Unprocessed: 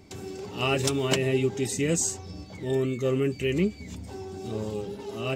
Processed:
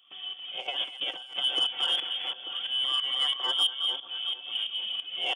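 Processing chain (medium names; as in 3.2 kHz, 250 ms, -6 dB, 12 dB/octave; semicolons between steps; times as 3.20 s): tracing distortion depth 0.034 ms; comb 4.9 ms, depth 45%; echo whose repeats swap between lows and highs 222 ms, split 2.2 kHz, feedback 73%, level -5 dB; tremolo saw up 3 Hz, depth 75%; 2.84–3.52 s: small resonant body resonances 1.5/2.3 kHz, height 17 dB, ringing for 45 ms; frequency inversion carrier 3.4 kHz; saturation -18 dBFS, distortion -18 dB; steep high-pass 170 Hz 36 dB/octave; 0.60–1.40 s: compressor with a negative ratio -34 dBFS, ratio -0.5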